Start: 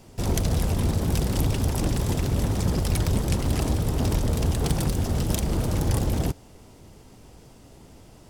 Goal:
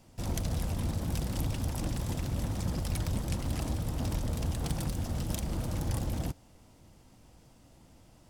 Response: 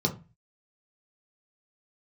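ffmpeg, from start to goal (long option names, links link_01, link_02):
-af "equalizer=frequency=410:width=7.2:gain=-11.5,volume=-8.5dB"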